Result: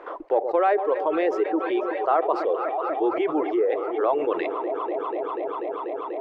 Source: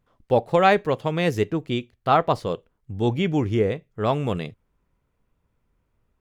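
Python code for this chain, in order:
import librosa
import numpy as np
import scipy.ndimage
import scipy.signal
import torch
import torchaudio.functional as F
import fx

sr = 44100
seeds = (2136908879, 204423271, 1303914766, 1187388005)

p1 = 10.0 ** (-20.5 / 20.0) * np.tanh(x / 10.0 ** (-20.5 / 20.0))
p2 = x + (p1 * librosa.db_to_amplitude(-8.5))
p3 = scipy.signal.sosfilt(scipy.signal.ellip(4, 1.0, 40, 330.0, 'highpass', fs=sr, output='sos'), p2)
p4 = p3 + fx.echo_alternate(p3, sr, ms=122, hz=840.0, feedback_pct=87, wet_db=-12.0, dry=0)
p5 = fx.dereverb_blind(p4, sr, rt60_s=1.6)
p6 = scipy.signal.sosfilt(scipy.signal.butter(2, 1400.0, 'lowpass', fs=sr, output='sos'), p5)
p7 = fx.env_flatten(p6, sr, amount_pct=70)
y = p7 * librosa.db_to_amplitude(-4.5)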